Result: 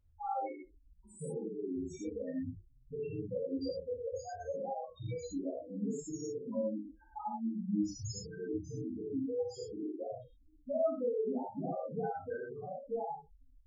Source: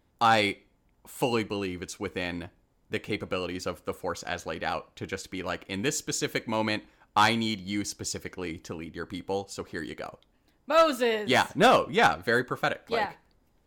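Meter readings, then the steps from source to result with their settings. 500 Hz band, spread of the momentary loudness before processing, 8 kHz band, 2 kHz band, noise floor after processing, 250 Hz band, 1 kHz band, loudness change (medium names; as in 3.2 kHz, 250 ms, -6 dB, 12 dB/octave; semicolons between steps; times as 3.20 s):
-8.0 dB, 15 LU, -14.5 dB, -29.0 dB, -64 dBFS, -5.5 dB, -15.0 dB, -11.0 dB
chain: bass shelf 390 Hz +2.5 dB; compression 10:1, threshold -34 dBFS, peak gain reduction 19 dB; loudest bins only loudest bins 2; gated-style reverb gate 140 ms flat, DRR -5.5 dB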